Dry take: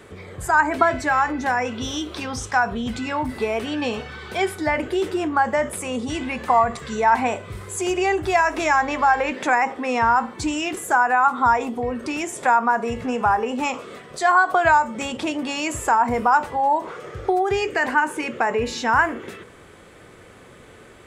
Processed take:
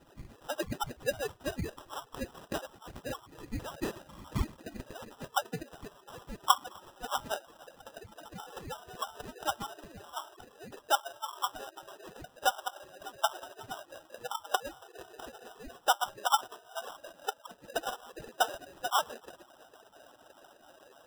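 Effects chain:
harmonic-percussive split with one part muted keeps percussive
high-pass filter 240 Hz 12 dB per octave
gate on every frequency bin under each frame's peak −25 dB strong
dynamic equaliser 2,500 Hz, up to +3 dB, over −40 dBFS, Q 2.5
in parallel at −2.5 dB: downward compressor, threshold −42 dBFS, peak gain reduction 25.5 dB
on the sum: band-pass filter sweep 2,200 Hz → 700 Hz, 0:04.51–0:07.63
decimation without filtering 20×
level −2 dB

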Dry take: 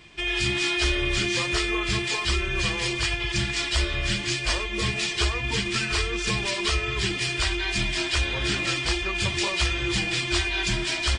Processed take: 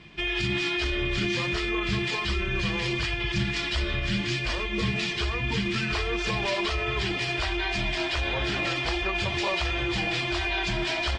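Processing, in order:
low-pass filter 4,400 Hz 12 dB per octave
brickwall limiter −19.5 dBFS, peak gain reduction 6.5 dB
parametric band 180 Hz +8 dB 0.99 octaves, from 0:05.95 710 Hz

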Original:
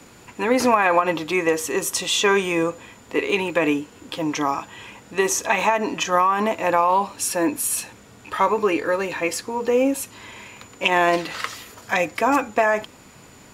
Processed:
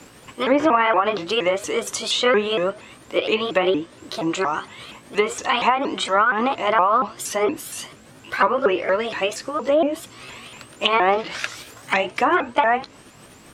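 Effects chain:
pitch shifter swept by a sawtooth +5 semitones, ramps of 234 ms
treble cut that deepens with the level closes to 2,200 Hz, closed at −15 dBFS
level +2 dB

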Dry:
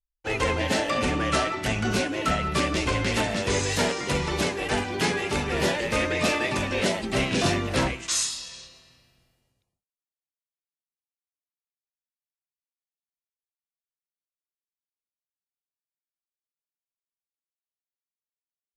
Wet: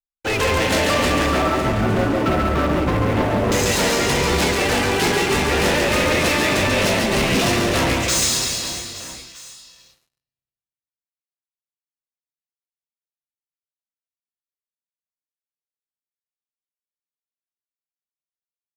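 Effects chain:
0:01.26–0:03.52: low-pass filter 1,100 Hz 12 dB per octave
leveller curve on the samples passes 5
reverse bouncing-ball delay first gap 140 ms, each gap 1.3×, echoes 5
level −6 dB

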